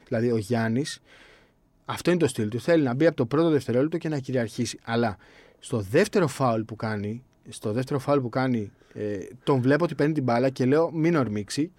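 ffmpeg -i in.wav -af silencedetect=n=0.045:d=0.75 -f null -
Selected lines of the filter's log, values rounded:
silence_start: 0.93
silence_end: 1.89 | silence_duration: 0.96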